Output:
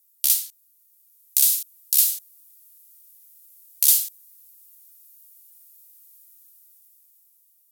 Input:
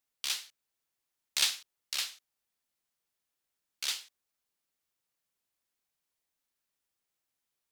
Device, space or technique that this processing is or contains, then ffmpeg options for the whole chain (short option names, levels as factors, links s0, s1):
FM broadcast chain: -filter_complex "[0:a]highpass=45,dynaudnorm=f=390:g=7:m=3.35,acrossover=split=1400|7000[s0][s1][s2];[s0]acompressor=threshold=0.00355:ratio=4[s3];[s1]acompressor=threshold=0.0224:ratio=4[s4];[s2]acompressor=threshold=0.0224:ratio=4[s5];[s3][s4][s5]amix=inputs=3:normalize=0,aemphasis=mode=production:type=75fm,alimiter=limit=0.335:level=0:latency=1:release=115,asoftclip=type=hard:threshold=0.237,lowpass=f=15000:w=0.5412,lowpass=f=15000:w=1.3066,aemphasis=mode=production:type=75fm,volume=0.501"